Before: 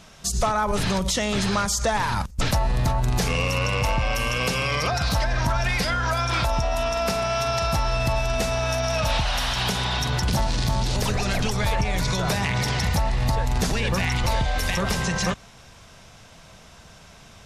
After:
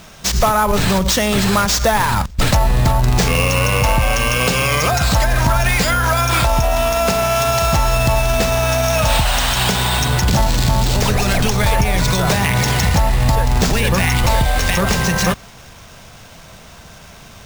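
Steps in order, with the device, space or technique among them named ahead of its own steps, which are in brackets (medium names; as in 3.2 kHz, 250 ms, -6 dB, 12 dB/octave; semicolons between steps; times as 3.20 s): early companding sampler (sample-rate reducer 12 kHz, jitter 0%; companded quantiser 6-bit); trim +8 dB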